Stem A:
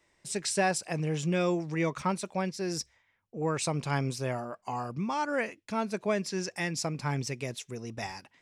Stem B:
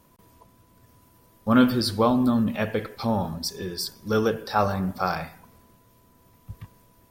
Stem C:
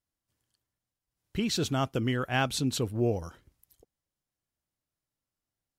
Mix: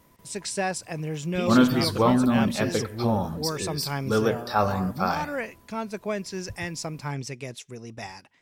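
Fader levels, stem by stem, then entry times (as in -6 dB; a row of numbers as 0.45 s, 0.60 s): -0.5 dB, -0.5 dB, -3.0 dB; 0.00 s, 0.00 s, 0.00 s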